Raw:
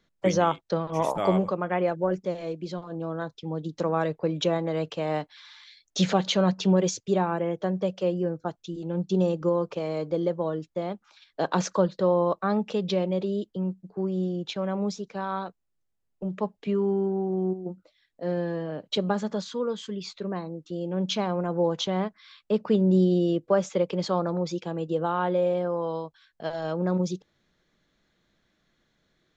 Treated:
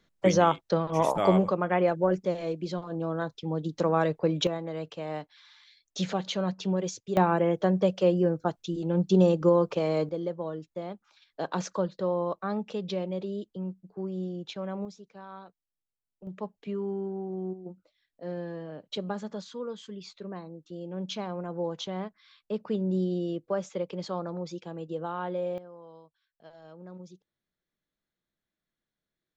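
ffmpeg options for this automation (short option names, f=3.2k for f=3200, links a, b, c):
-af "asetnsamples=n=441:p=0,asendcmd='4.47 volume volume -7dB;7.17 volume volume 3dB;10.09 volume volume -6dB;14.85 volume volume -14dB;16.27 volume volume -7.5dB;25.58 volume volume -19.5dB',volume=1dB"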